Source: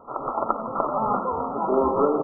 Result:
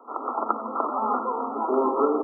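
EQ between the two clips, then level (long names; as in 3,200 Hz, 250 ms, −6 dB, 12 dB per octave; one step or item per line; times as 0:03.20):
Chebyshev high-pass filter 220 Hz, order 10
parametric band 580 Hz −8.5 dB 0.23 octaves
0.0 dB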